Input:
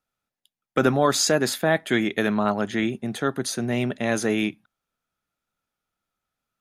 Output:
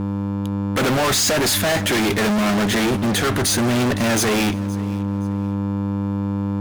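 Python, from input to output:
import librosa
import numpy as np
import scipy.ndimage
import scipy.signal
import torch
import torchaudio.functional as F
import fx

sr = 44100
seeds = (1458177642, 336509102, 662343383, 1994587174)

y = fx.dmg_buzz(x, sr, base_hz=100.0, harmonics=3, level_db=-43.0, tilt_db=-4, odd_only=False)
y = fx.fuzz(y, sr, gain_db=42.0, gate_db=-47.0)
y = fx.echo_feedback(y, sr, ms=520, feedback_pct=31, wet_db=-20.5)
y = F.gain(torch.from_numpy(y), -4.0).numpy()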